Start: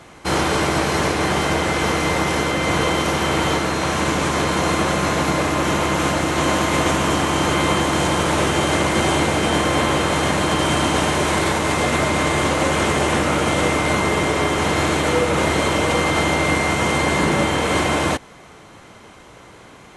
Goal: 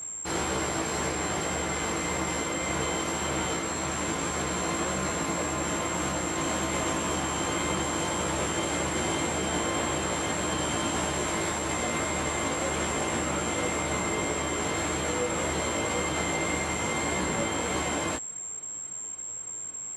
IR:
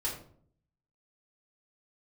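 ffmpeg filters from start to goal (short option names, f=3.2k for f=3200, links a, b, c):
-af "aeval=exprs='val(0)+0.0708*sin(2*PI*7500*n/s)':c=same,flanger=delay=15.5:depth=2.7:speed=1.8,volume=-8dB"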